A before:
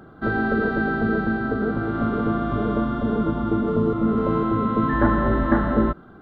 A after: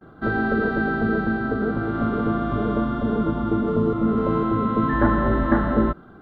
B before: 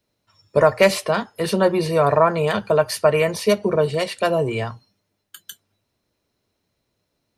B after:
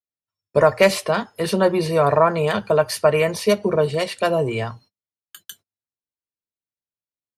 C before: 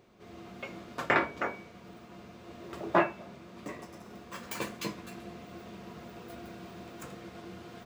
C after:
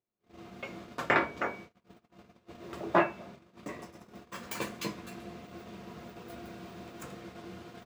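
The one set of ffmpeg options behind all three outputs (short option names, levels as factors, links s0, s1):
-af "agate=range=0.0251:threshold=0.00447:ratio=16:detection=peak"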